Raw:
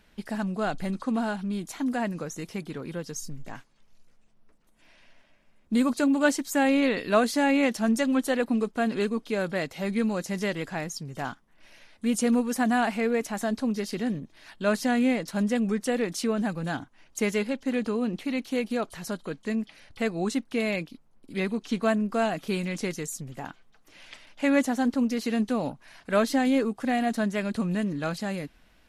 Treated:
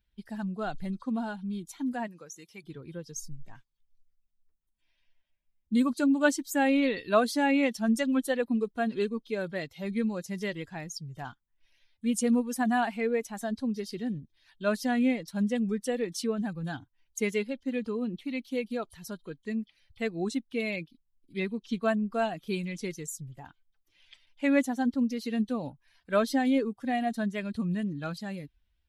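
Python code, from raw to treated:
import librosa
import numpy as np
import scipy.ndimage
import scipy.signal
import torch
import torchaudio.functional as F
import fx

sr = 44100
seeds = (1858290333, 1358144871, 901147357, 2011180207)

y = fx.bin_expand(x, sr, power=1.5)
y = fx.highpass(y, sr, hz=700.0, slope=6, at=(2.06, 2.63), fade=0.02)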